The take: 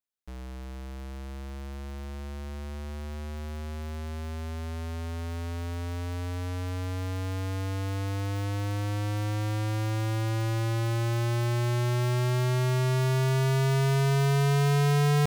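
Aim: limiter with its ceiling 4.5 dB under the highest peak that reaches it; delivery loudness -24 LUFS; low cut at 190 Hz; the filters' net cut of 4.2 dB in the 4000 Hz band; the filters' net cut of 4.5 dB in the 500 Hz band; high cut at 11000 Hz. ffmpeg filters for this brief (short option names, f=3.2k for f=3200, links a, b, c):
-af "highpass=190,lowpass=11k,equalizer=f=500:t=o:g=-6,equalizer=f=4k:t=o:g=-5.5,volume=12.5dB,alimiter=limit=-9.5dB:level=0:latency=1"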